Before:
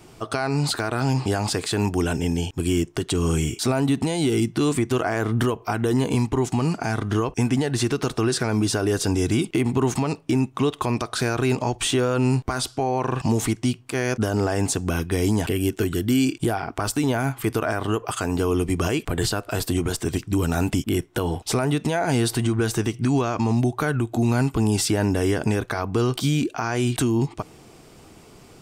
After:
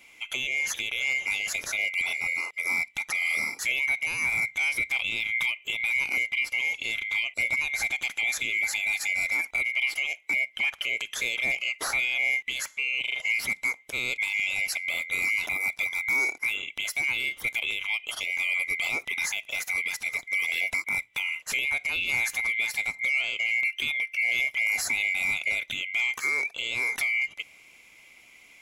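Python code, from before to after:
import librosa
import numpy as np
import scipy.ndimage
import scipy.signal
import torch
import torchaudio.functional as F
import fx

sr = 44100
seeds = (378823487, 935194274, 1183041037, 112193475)

y = fx.band_swap(x, sr, width_hz=2000)
y = fx.peak_eq(y, sr, hz=130.0, db=-12.5, octaves=2.1, at=(9.29, 10.3))
y = y * librosa.db_to_amplitude(-6.0)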